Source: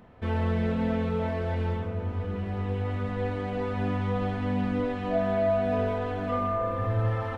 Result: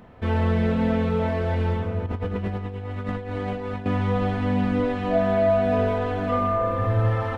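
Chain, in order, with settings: 2.06–3.86 negative-ratio compressor -33 dBFS, ratio -0.5; gain +5 dB

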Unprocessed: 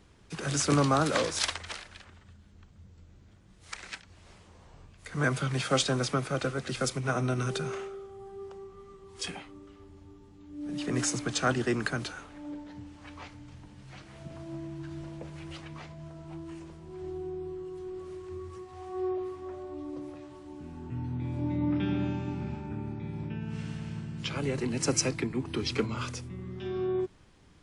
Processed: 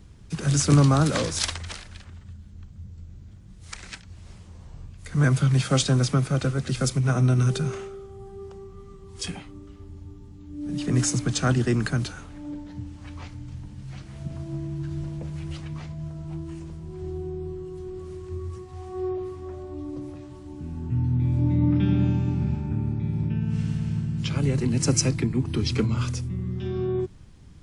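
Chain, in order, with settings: tone controls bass +13 dB, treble +5 dB

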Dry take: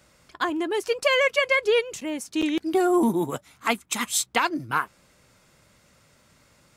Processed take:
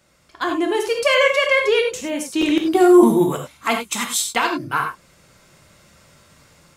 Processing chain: AGC gain up to 8 dB; non-linear reverb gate 0.12 s flat, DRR 2.5 dB; gain -2.5 dB

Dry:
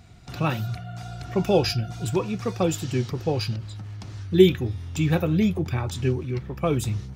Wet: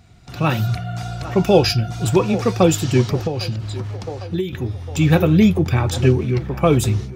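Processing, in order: AGC gain up to 11.5 dB; narrowing echo 0.804 s, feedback 47%, band-pass 740 Hz, level -12.5 dB; 3.19–4.53 compressor 16:1, threshold -19 dBFS, peak gain reduction 14 dB

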